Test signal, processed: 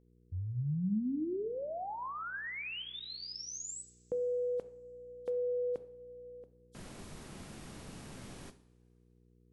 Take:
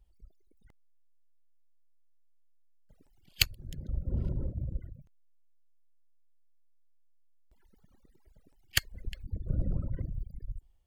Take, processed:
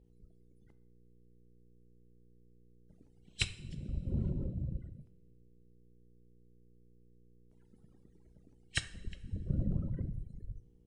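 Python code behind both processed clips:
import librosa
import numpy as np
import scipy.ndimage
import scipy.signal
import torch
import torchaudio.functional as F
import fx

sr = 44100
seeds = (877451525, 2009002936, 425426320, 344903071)

y = fx.freq_compress(x, sr, knee_hz=3100.0, ratio=1.5)
y = fx.peak_eq(y, sr, hz=200.0, db=9.0, octaves=2.2)
y = fx.dmg_buzz(y, sr, base_hz=60.0, harmonics=8, level_db=-60.0, tilt_db=-4, odd_only=False)
y = fx.rev_double_slope(y, sr, seeds[0], early_s=0.54, late_s=2.4, knee_db=-19, drr_db=10.5)
y = y * 10.0 ** (-6.5 / 20.0)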